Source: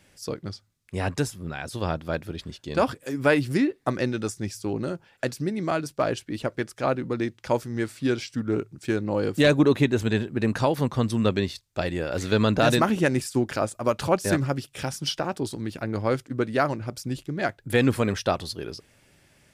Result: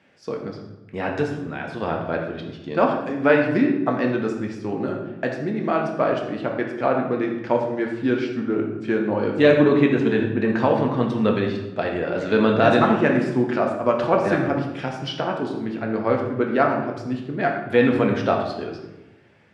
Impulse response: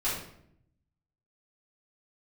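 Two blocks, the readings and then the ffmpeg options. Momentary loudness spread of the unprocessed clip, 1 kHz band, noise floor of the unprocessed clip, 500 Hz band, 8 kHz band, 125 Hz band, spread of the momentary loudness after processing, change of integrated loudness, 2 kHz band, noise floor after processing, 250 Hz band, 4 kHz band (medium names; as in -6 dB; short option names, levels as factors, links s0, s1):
11 LU, +5.5 dB, -63 dBFS, +5.0 dB, under -10 dB, -0.5 dB, 11 LU, +4.0 dB, +3.5 dB, -44 dBFS, +4.5 dB, -2.5 dB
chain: -filter_complex "[0:a]highpass=170,lowpass=2600,asplit=2[s0][s1];[1:a]atrim=start_sample=2205,asetrate=27783,aresample=44100[s2];[s1][s2]afir=irnorm=-1:irlink=0,volume=0.316[s3];[s0][s3]amix=inputs=2:normalize=0"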